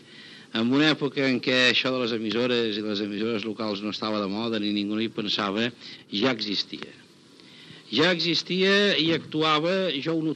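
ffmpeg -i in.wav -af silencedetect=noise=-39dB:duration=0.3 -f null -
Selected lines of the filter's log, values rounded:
silence_start: 6.95
silence_end: 7.40 | silence_duration: 0.45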